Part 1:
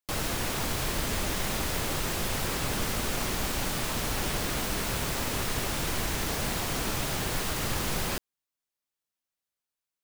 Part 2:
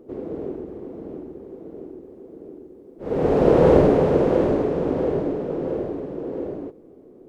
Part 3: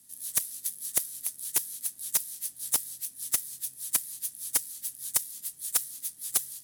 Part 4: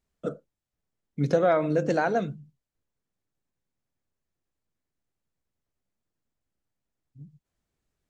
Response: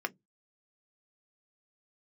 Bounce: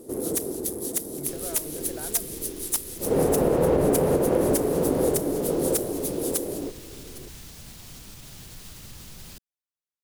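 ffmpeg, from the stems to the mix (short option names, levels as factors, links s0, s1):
-filter_complex "[0:a]alimiter=limit=0.0794:level=0:latency=1:release=64,acrossover=split=240|3000[s0][s1][s2];[s1]acompressor=threshold=0.00501:ratio=6[s3];[s0][s3][s2]amix=inputs=3:normalize=0,adelay=1200,volume=0.355[s4];[1:a]volume=1.19[s5];[2:a]volume=1.33,asplit=2[s6][s7];[s7]volume=0.0631[s8];[3:a]acompressor=threshold=0.0398:ratio=6,volume=0.355[s9];[s8]aecho=0:1:807|1614|2421:1|0.17|0.0289[s10];[s4][s5][s6][s9][s10]amix=inputs=5:normalize=0,alimiter=limit=0.251:level=0:latency=1:release=330"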